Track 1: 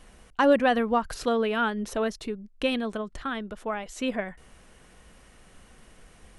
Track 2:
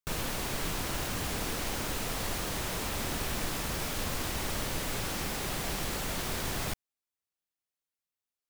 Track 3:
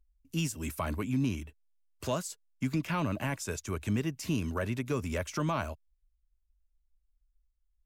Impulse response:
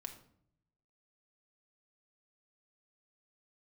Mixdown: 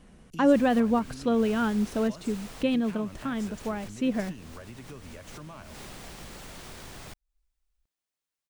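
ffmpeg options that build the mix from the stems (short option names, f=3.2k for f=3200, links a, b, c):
-filter_complex "[0:a]equalizer=f=170:t=o:w=2.3:g=12.5,volume=-6dB[a];[1:a]adelay=400,volume=2.5dB[b];[2:a]volume=-2dB,asplit=2[c][d];[d]apad=whole_len=392090[e];[b][e]sidechaincompress=threshold=-40dB:ratio=8:attack=6.4:release=242[f];[f][c]amix=inputs=2:normalize=0,acompressor=threshold=-42dB:ratio=5,volume=0dB[g];[a][g]amix=inputs=2:normalize=0,equalizer=f=13k:w=3:g=-11"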